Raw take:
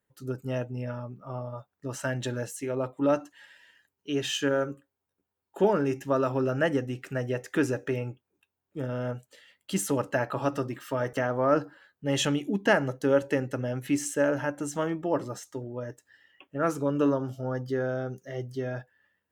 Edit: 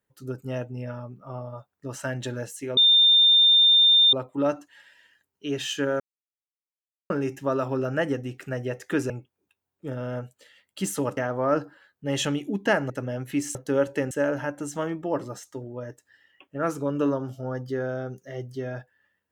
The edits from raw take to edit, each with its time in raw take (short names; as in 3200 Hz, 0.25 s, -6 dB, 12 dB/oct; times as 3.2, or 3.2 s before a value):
2.77 add tone 3610 Hz -13.5 dBFS 1.36 s
4.64–5.74 mute
7.74–8.02 cut
10.09–11.17 cut
12.9–13.46 move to 14.11